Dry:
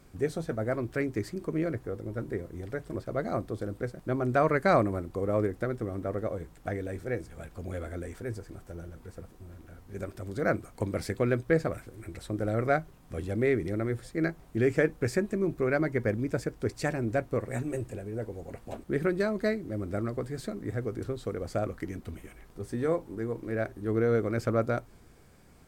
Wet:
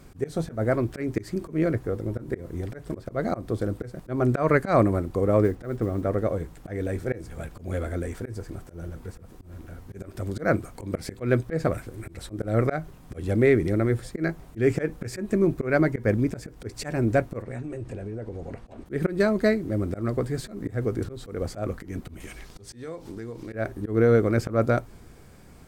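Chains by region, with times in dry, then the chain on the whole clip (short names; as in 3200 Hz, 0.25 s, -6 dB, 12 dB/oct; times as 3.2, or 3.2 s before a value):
5.44–6.02 LPF 3500 Hz 6 dB/oct + modulation noise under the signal 33 dB
17.42–18.86 notch 7200 Hz, Q 19 + compressor, threshold -38 dBFS + air absorption 66 m
22.2–23.53 bell 4800 Hz +12 dB 1.9 oct + compressor 5:1, threshold -41 dBFS
whole clip: low shelf 320 Hz +2.5 dB; auto swell 0.151 s; gain +6 dB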